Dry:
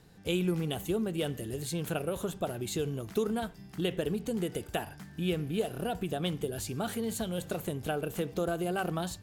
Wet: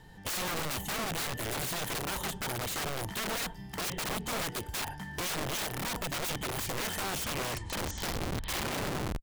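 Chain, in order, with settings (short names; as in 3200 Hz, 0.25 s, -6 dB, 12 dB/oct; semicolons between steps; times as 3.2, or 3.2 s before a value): tape stop at the end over 2.54 s; recorder AGC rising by 9.3 dB/s; low shelf 68 Hz +11.5 dB; small resonant body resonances 900/1800/3100 Hz, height 16 dB, ringing for 40 ms; wrapped overs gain 29 dB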